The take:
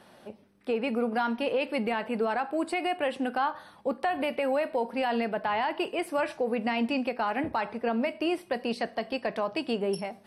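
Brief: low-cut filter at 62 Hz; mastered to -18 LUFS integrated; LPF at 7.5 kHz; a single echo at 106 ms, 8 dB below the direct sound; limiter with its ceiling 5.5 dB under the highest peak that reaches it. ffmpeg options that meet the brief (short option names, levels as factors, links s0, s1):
-af "highpass=62,lowpass=7500,alimiter=limit=0.0708:level=0:latency=1,aecho=1:1:106:0.398,volume=5.01"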